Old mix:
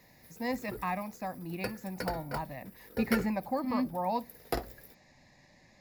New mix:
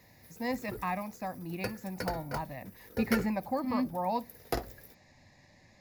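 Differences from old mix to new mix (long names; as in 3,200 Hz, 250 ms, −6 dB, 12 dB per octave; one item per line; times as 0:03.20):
background: remove notch filter 6,300 Hz, Q 5.2
master: add parametric band 96 Hz +10.5 dB 0.27 octaves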